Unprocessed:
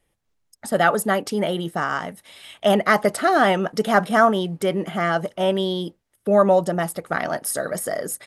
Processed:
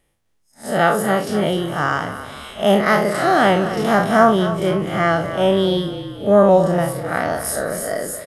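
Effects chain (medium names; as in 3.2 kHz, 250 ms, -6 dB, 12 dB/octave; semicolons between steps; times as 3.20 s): spectral blur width 103 ms; frequency-shifting echo 256 ms, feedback 52%, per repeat -33 Hz, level -12 dB; trim +6 dB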